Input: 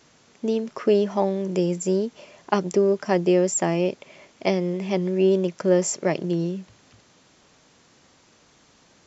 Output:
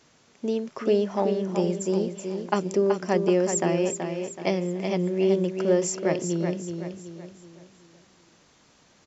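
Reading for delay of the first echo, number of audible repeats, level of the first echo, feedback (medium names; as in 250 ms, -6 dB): 377 ms, 4, -6.5 dB, 41%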